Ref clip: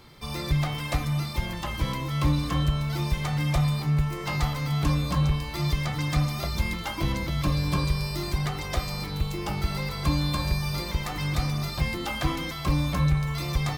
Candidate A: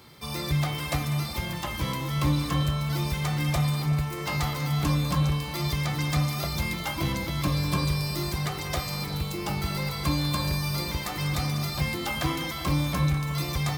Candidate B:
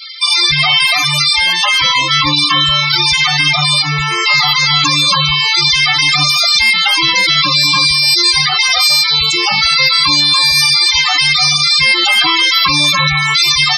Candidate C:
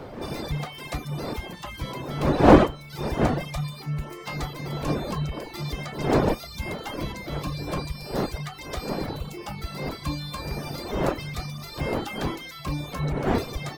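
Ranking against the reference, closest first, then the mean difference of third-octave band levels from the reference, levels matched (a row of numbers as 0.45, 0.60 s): A, C, B; 2.0, 6.5, 16.0 dB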